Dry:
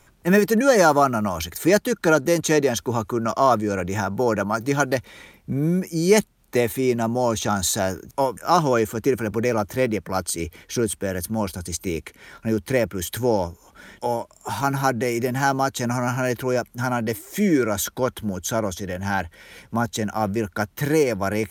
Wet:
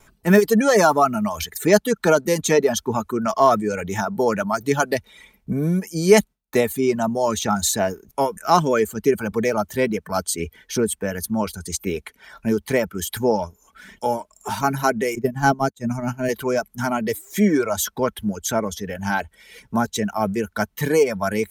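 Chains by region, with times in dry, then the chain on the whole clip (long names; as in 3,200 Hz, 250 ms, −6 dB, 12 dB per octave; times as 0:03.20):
0:15.15–0:16.29: downward expander −17 dBFS + low-shelf EQ 380 Hz +12 dB
whole clip: reverb reduction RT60 0.97 s; noise gate with hold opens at −50 dBFS; comb filter 4.6 ms, depth 35%; level +1.5 dB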